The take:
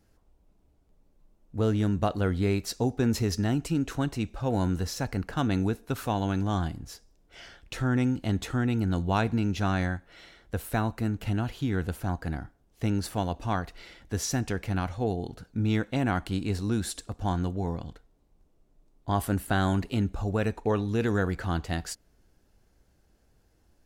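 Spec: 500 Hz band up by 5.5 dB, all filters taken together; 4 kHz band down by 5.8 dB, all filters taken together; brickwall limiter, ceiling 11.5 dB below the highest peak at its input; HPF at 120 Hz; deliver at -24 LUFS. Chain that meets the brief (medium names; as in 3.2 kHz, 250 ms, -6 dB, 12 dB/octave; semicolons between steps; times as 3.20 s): high-pass 120 Hz; peaking EQ 500 Hz +7 dB; peaking EQ 4 kHz -8 dB; trim +8.5 dB; peak limiter -11.5 dBFS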